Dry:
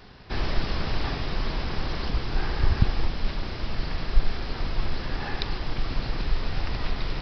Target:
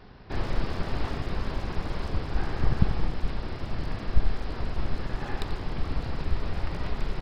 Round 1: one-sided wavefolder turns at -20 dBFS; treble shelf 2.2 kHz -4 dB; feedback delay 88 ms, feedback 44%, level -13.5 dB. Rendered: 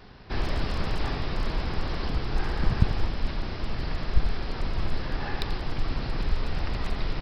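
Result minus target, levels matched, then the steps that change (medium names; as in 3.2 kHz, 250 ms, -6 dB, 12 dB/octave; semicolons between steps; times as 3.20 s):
one-sided wavefolder: distortion -12 dB; 4 kHz band +4.0 dB
change: one-sided wavefolder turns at -29.5 dBFS; change: treble shelf 2.2 kHz -10.5 dB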